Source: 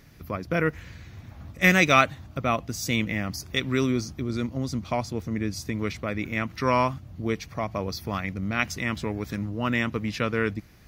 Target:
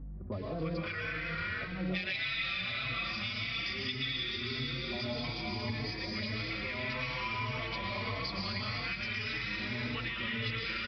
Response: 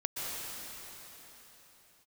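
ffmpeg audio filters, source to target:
-filter_complex "[0:a]highpass=96,acrossover=split=790[link_01][link_02];[link_02]adelay=320[link_03];[link_01][link_03]amix=inputs=2:normalize=0,asoftclip=type=tanh:threshold=-13.5dB,equalizer=frequency=3200:width=0.44:gain=11[link_04];[1:a]atrim=start_sample=2205,asetrate=48510,aresample=44100[link_05];[link_04][link_05]afir=irnorm=-1:irlink=0,acrossover=split=130|3000[link_06][link_07][link_08];[link_07]acompressor=threshold=-30dB:ratio=6[link_09];[link_06][link_09][link_08]amix=inputs=3:normalize=0,aeval=exprs='val(0)+0.00794*(sin(2*PI*50*n/s)+sin(2*PI*2*50*n/s)/2+sin(2*PI*3*50*n/s)/3+sin(2*PI*4*50*n/s)/4+sin(2*PI*5*50*n/s)/5)':channel_layout=same,acompressor=threshold=-32dB:ratio=6,aresample=11025,aresample=44100,asplit=2[link_10][link_11];[link_11]adelay=4,afreqshift=1.7[link_12];[link_10][link_12]amix=inputs=2:normalize=1,volume=2dB"

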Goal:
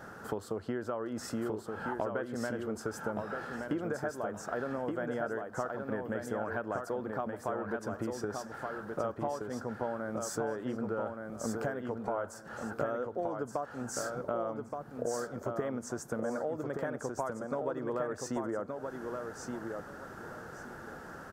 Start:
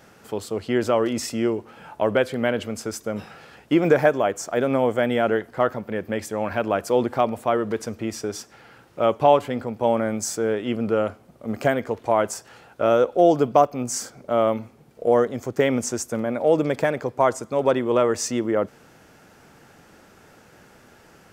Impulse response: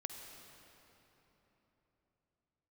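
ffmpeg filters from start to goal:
-af "highshelf=frequency=1900:width_type=q:width=3:gain=-6.5,acompressor=threshold=-35dB:ratio=12,aecho=1:1:1173|2346|3519:0.596|0.143|0.0343,volume=2.5dB"

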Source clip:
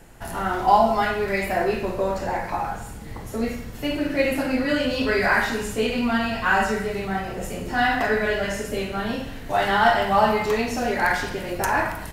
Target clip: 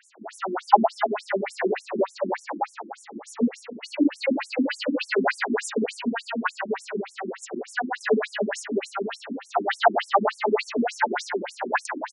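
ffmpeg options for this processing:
ffmpeg -i in.wav -filter_complex "[0:a]asettb=1/sr,asplit=3[link_01][link_02][link_03];[link_01]atrim=end=5.844[link_04];[link_02]atrim=start=5.84:end=8.01,asetpts=PTS-STARTPTS,afade=type=in:duration=0.004:curve=qsin,afade=type=out:start_time=2.166:duration=0.004:curve=qsin,acompressor=threshold=-22dB:ratio=4[link_05];[link_03]atrim=start=8.006[link_06];[link_04][link_05]acrossfade=duration=0.004:curve1=hsin:curve2=qsin[link_07];[link_07][link_06]acrossfade=duration=0.004:curve1=qsin:curve2=hsin,lowshelf=frequency=380:gain=3,aecho=1:1:214|428|642:0.355|0.106|0.0319,afftfilt=real='re*between(b*sr/1024,250*pow(8000/250,0.5+0.5*sin(2*PI*3.4*pts/sr))/1.41,250*pow(8000/250,0.5+0.5*sin(2*PI*3.4*pts/sr))*1.41)':imag='im*between(b*sr/1024,250*pow(8000/250,0.5+0.5*sin(2*PI*3.4*pts/sr))/1.41,250*pow(8000/250,0.5+0.5*sin(2*PI*3.4*pts/sr))*1.41)':win_size=1024:overlap=0.75,volume=4.5dB" out.wav

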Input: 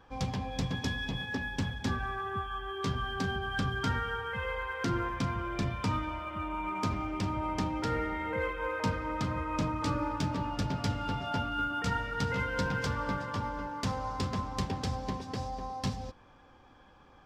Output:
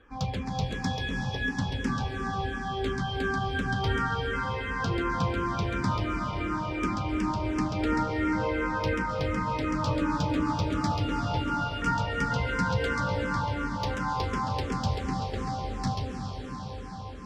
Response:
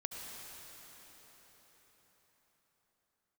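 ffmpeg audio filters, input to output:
-filter_complex "[0:a]adynamicsmooth=sensitivity=5:basefreq=7400,asplit=2[link_01][link_02];[1:a]atrim=start_sample=2205,asetrate=25137,aresample=44100,adelay=136[link_03];[link_02][link_03]afir=irnorm=-1:irlink=0,volume=-3.5dB[link_04];[link_01][link_04]amix=inputs=2:normalize=0,asplit=2[link_05][link_06];[link_06]afreqshift=-2.8[link_07];[link_05][link_07]amix=inputs=2:normalize=1,volume=4dB"

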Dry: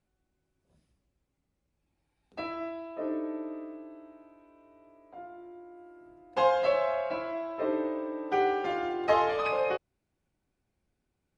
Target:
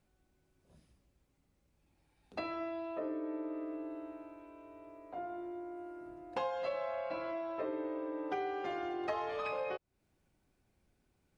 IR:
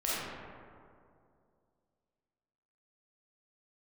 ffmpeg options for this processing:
-af "acompressor=threshold=-42dB:ratio=4,volume=4.5dB"

